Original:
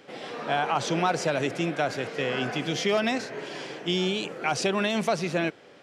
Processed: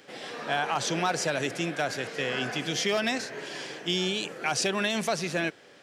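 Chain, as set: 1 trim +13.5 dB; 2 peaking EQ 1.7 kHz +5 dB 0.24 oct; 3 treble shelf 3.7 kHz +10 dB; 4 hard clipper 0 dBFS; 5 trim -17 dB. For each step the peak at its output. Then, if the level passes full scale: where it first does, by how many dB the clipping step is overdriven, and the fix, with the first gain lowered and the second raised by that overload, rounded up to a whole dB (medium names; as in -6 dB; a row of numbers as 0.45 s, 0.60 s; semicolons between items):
+1.5 dBFS, +2.0 dBFS, +4.0 dBFS, 0.0 dBFS, -17.0 dBFS; step 1, 4.0 dB; step 1 +9.5 dB, step 5 -13 dB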